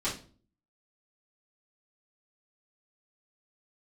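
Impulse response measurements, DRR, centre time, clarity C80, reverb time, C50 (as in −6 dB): −10.5 dB, 26 ms, 14.0 dB, 0.40 s, 8.0 dB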